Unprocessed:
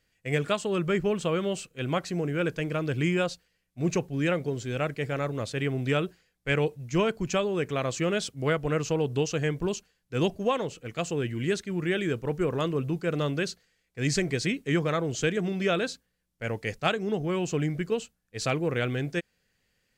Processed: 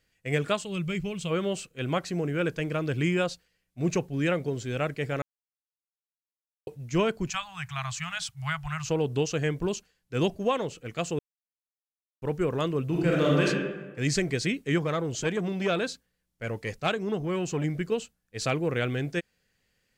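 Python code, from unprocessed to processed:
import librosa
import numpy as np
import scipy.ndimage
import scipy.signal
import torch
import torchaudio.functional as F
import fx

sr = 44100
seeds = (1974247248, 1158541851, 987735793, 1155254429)

y = fx.spec_box(x, sr, start_s=0.63, length_s=0.68, low_hz=200.0, high_hz=2000.0, gain_db=-10)
y = fx.cheby2_bandstop(y, sr, low_hz=220.0, high_hz=540.0, order=4, stop_db=40, at=(7.3, 8.89))
y = fx.reverb_throw(y, sr, start_s=12.86, length_s=0.6, rt60_s=1.2, drr_db=-4.0)
y = fx.transformer_sat(y, sr, knee_hz=740.0, at=(14.78, 17.64))
y = fx.edit(y, sr, fx.silence(start_s=5.22, length_s=1.45),
    fx.silence(start_s=11.19, length_s=1.03), tone=tone)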